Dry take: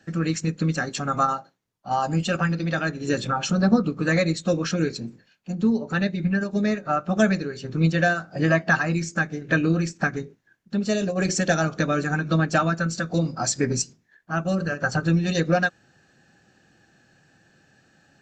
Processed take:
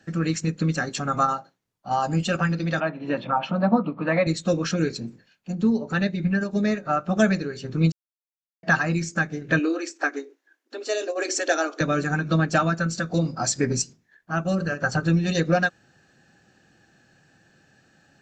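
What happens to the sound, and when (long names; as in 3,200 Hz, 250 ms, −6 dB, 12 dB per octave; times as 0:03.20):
0:02.80–0:04.27: loudspeaker in its box 190–3,000 Hz, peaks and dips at 400 Hz −9 dB, 650 Hz +7 dB, 950 Hz +9 dB, 1,600 Hz −5 dB
0:07.92–0:08.63: silence
0:09.59–0:11.81: linear-phase brick-wall high-pass 260 Hz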